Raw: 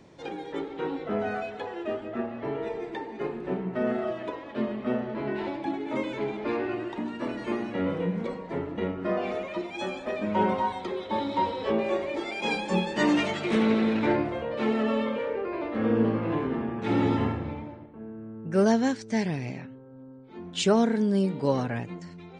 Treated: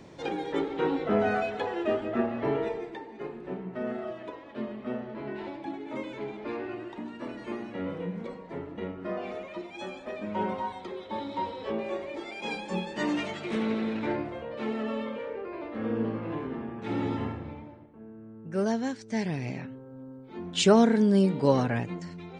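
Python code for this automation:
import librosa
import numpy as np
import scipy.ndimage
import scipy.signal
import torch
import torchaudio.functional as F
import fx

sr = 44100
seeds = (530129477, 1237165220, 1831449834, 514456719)

y = fx.gain(x, sr, db=fx.line((2.56, 4.0), (3.0, -6.0), (18.93, -6.0), (19.67, 2.5)))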